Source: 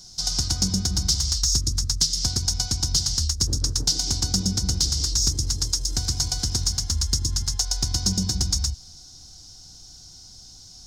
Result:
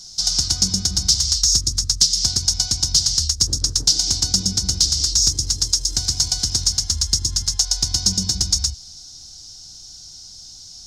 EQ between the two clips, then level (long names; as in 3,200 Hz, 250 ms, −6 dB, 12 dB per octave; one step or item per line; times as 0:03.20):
parametric band 5,300 Hz +8 dB 2.6 octaves
−1.5 dB